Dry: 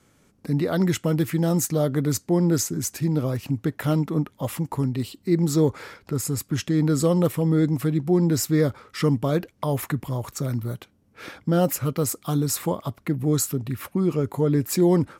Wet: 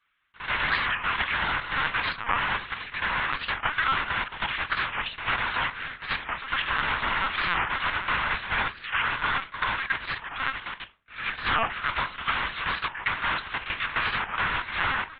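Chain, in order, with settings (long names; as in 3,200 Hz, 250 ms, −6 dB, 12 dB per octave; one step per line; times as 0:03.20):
sub-harmonics by changed cycles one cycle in 3, inverted
high-pass filter 1,300 Hz 24 dB per octave
in parallel at +1 dB: output level in coarse steps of 20 dB
on the sum: leveller curve on the samples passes 3
downward compressor, threshold −19 dBFS, peak gain reduction 8 dB
high-frequency loss of the air 180 metres
backwards echo 92 ms −10 dB
on a send at −4.5 dB: convolution reverb RT60 0.35 s, pre-delay 4 ms
on the sum: linear-prediction vocoder at 8 kHz pitch kept
wow of a warped record 45 rpm, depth 250 cents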